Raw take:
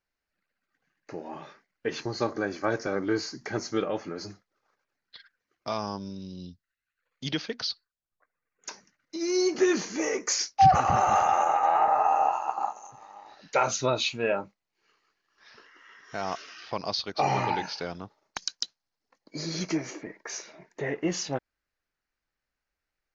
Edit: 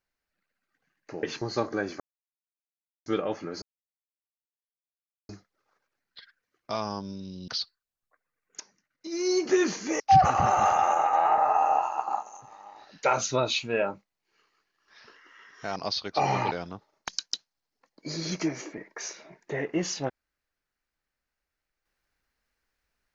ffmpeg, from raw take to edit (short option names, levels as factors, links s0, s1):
-filter_complex "[0:a]asplit=10[s0][s1][s2][s3][s4][s5][s6][s7][s8][s9];[s0]atrim=end=1.232[s10];[s1]atrim=start=1.868:end=2.64,asetpts=PTS-STARTPTS,afade=t=out:st=0.768:d=0.004:c=hsin[s11];[s2]atrim=start=2.64:end=3.7,asetpts=PTS-STARTPTS,volume=0[s12];[s3]atrim=start=3.7:end=4.26,asetpts=PTS-STARTPTS,afade=t=in:d=0.004:c=hsin,afade=t=out:st=0.556:d=0.004:c=hsin,apad=pad_dur=1.67[s13];[s4]atrim=start=4.26:end=6.452,asetpts=PTS-STARTPTS,afade=t=in:d=0.004:c=hsin[s14];[s5]atrim=start=7.568:end=8.69,asetpts=PTS-STARTPTS,afade=t=out:st=1.118:d=0.004:c=hsin:silence=0.211349[s15];[s6]atrim=start=8.69:end=10.092,asetpts=PTS-STARTPTS,afade=t=in:d=0.81:silence=0.211349[s16];[s7]atrim=start=10.498:end=16.262[s17];[s8]atrim=start=16.778:end=17.532[s18];[s9]atrim=start=17.798[s19];[s11][s12][s13][s14]concat=n=4:v=0:a=1[s20];[s10][s20]acrossfade=d=0.004:c1=hsin:c2=hsin[s21];[s15][s16]concat=n=2:v=0:a=1[s22];[s21][s22]acrossfade=d=0.004:c1=hsin:c2=hsin[s23];[s23][s17]acrossfade=d=0.004:c1=hsin:c2=hsin[s24];[s24][s18]acrossfade=d=0.004:c1=hsin:c2=hsin[s25];[s25][s19]acrossfade=d=0.004:c1=hsin:c2=hsin"